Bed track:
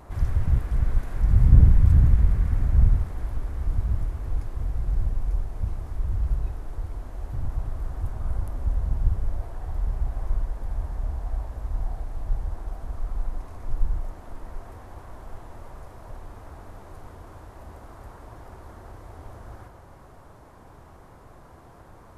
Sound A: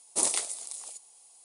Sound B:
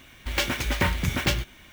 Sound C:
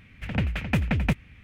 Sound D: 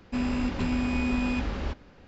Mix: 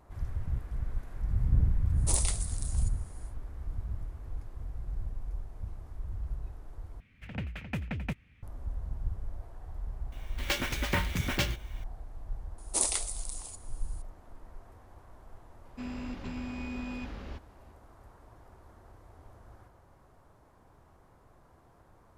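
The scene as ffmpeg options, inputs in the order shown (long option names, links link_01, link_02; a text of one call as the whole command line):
ffmpeg -i bed.wav -i cue0.wav -i cue1.wav -i cue2.wav -i cue3.wav -filter_complex "[1:a]asplit=2[link_01][link_02];[0:a]volume=-11.5dB[link_03];[link_01]asoftclip=type=hard:threshold=-13dB[link_04];[link_03]asplit=2[link_05][link_06];[link_05]atrim=end=7.004[link_07];[3:a]atrim=end=1.43,asetpts=PTS-STARTPTS,volume=-11dB[link_08];[link_06]atrim=start=8.426[link_09];[link_04]atrim=end=1.44,asetpts=PTS-STARTPTS,volume=-4dB,afade=type=in:duration=0.1,afade=type=out:start_time=1.34:duration=0.1,adelay=1910[link_10];[2:a]atrim=end=1.72,asetpts=PTS-STARTPTS,volume=-5.5dB,afade=type=in:duration=0.004:curve=hsin,afade=type=out:start_time=1.716:duration=0.004:curve=hsin,adelay=10120[link_11];[link_02]atrim=end=1.44,asetpts=PTS-STARTPTS,volume=-2dB,afade=type=in:duration=0.004:curve=hsin,afade=type=out:start_time=1.436:duration=0.004:curve=hsin,adelay=12580[link_12];[4:a]atrim=end=2.07,asetpts=PTS-STARTPTS,volume=-11dB,afade=type=in:duration=0.004:curve=hsin,afade=type=out:start_time=2.066:duration=0.004:curve=hsin,adelay=15650[link_13];[link_07][link_08]acrossfade=duration=0.004:curve1=hsin:curve2=hsin[link_14];[link_14][link_09]acrossfade=duration=0.004:curve1=hsin:curve2=hsin[link_15];[link_15][link_10][link_11][link_12][link_13]amix=inputs=5:normalize=0" out.wav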